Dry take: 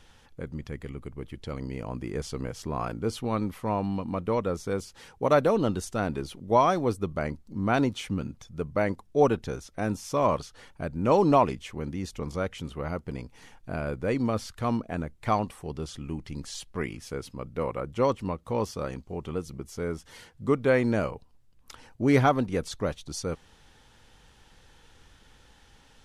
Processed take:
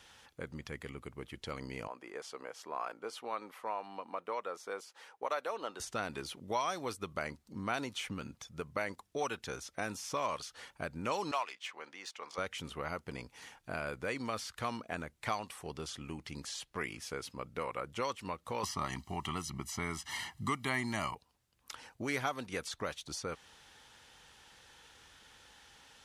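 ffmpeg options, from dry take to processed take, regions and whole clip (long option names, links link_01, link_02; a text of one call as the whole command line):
ffmpeg -i in.wav -filter_complex "[0:a]asettb=1/sr,asplit=3[link_01][link_02][link_03];[link_01]atrim=end=1.874[link_04];[link_02]atrim=start=1.87:end=5.8,asetpts=PTS-STARTPTS,afade=type=in:duration=0.004:curve=qsin,afade=type=out:start_time=3.926:duration=0.004:curve=qsin,highpass=540,highshelf=frequency=2100:gain=-11.5[link_05];[link_03]atrim=start=5.796[link_06];[link_04][link_05]acrossfade=duration=0.004:curve1=hsin:curve2=qsin[link_07];[link_07][link_06]acrossfade=duration=0.004:curve1=qsin:curve2=hsin,asettb=1/sr,asplit=3[link_08][link_09][link_10];[link_08]atrim=end=11.314[link_11];[link_09]atrim=start=11.31:end=12.38,asetpts=PTS-STARTPTS,afade=type=in:duration=0.004:curve=qsin,afade=type=out:start_time=1.066:duration=0.004:curve=qsin,highpass=790,adynamicsmooth=sensitivity=8:basefreq=5400[link_12];[link_10]atrim=start=12.376[link_13];[link_11][link_12]acrossfade=duration=0.004:curve1=hsin:curve2=qsin[link_14];[link_14][link_13]acrossfade=duration=0.004:curve1=qsin:curve2=hsin,asettb=1/sr,asplit=3[link_15][link_16][link_17];[link_15]atrim=end=18.634[link_18];[link_16]atrim=start=18.63:end=21.15,asetpts=PTS-STARTPTS,afade=type=in:duration=0.004:curve=qsin,afade=type=out:start_time=2.516:duration=0.004:curve=qsin,highpass=46,aecho=1:1:1:0.97,atrim=end_sample=111132,acontrast=53[link_19];[link_17]atrim=start=21.146[link_20];[link_18][link_19]acrossfade=duration=0.004:curve1=hsin:curve2=qsin[link_21];[link_21][link_20]acrossfade=duration=0.004:curve1=qsin:curve2=hsin,highpass=47,lowshelf=frequency=470:gain=-12,acrossover=split=1100|2600|6800[link_22][link_23][link_24][link_25];[link_22]acompressor=threshold=-40dB:ratio=4[link_26];[link_23]acompressor=threshold=-41dB:ratio=4[link_27];[link_24]acompressor=threshold=-47dB:ratio=4[link_28];[link_25]acompressor=threshold=-53dB:ratio=4[link_29];[link_26][link_27][link_28][link_29]amix=inputs=4:normalize=0,volume=2dB" out.wav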